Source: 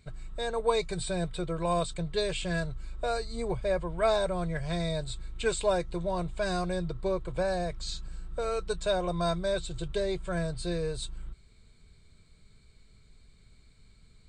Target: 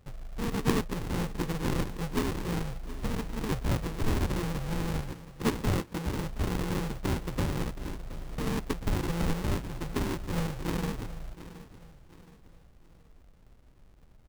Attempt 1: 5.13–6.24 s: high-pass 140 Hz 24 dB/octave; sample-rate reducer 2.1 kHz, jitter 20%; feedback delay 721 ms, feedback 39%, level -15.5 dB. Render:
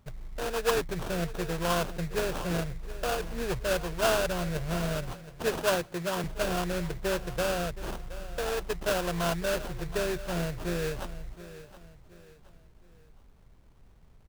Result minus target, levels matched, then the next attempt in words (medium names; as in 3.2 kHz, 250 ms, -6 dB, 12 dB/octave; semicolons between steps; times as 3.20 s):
sample-rate reducer: distortion -12 dB
5.13–6.24 s: high-pass 140 Hz 24 dB/octave; sample-rate reducer 670 Hz, jitter 20%; feedback delay 721 ms, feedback 39%, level -15.5 dB